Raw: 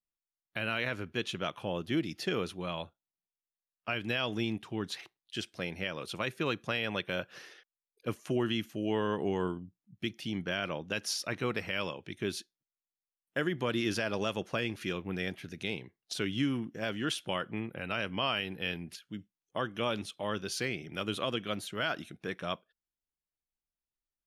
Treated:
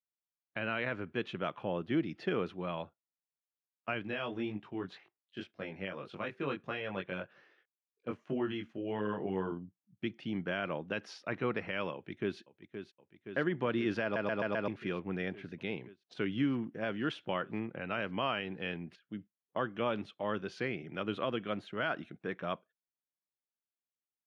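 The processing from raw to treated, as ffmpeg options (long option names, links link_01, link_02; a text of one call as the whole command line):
ffmpeg -i in.wav -filter_complex "[0:a]asettb=1/sr,asplit=3[link_01][link_02][link_03];[link_01]atrim=end=4.034[link_04];[link_02]atrim=start=4.03:end=9.52,asetpts=PTS-STARTPTS,afade=type=in:duration=0.004:curve=qsin,afade=type=out:start_time=5.486:duration=0.004:curve=qsin,flanger=delay=19.5:depth=2.1:speed=1.8[link_05];[link_03]atrim=start=9.516[link_06];[link_04][link_05]acrossfade=duration=0.004:curve1=hsin:curve2=qsin[link_07];[link_07][link_06]acrossfade=duration=0.004:curve1=qsin:curve2=hsin,asplit=2[link_08][link_09];[link_09]afade=type=in:start_time=11.94:duration=0.01,afade=type=out:start_time=12.39:duration=0.01,aecho=0:1:520|1040|1560|2080|2600|3120|3640|4160|4680|5200|5720|6240:0.354813|0.283851|0.227081|0.181664|0.145332|0.116265|0.0930122|0.0744098|0.0595278|0.0476222|0.0380978|0.0304782[link_10];[link_08][link_10]amix=inputs=2:normalize=0,asplit=6[link_11][link_12][link_13][link_14][link_15][link_16];[link_11]atrim=end=14.162[link_17];[link_12]atrim=start=14.028:end=14.162[link_18];[link_13]atrim=start=14.028:end=14.162[link_19];[link_14]atrim=start=14.028:end=14.162[link_20];[link_15]atrim=start=14.028:end=14.162[link_21];[link_16]atrim=start=14.678[link_22];[link_17][link_18]acrossfade=duration=0.004:curve1=hsin:curve2=hsin[link_23];[link_23][link_19]acrossfade=duration=0.004:curve1=hsin:curve2=hsin[link_24];[link_24][link_20]acrossfade=duration=0.004:curve1=hsin:curve2=hsin[link_25];[link_25][link_21]acrossfade=duration=0.004:curve1=hsin:curve2=hsin[link_26];[link_26][link_22]acrossfade=duration=0.004:curve1=hsin:curve2=hsin,lowpass=2100,agate=range=-7dB:threshold=-50dB:ratio=16:detection=peak,highpass=120" out.wav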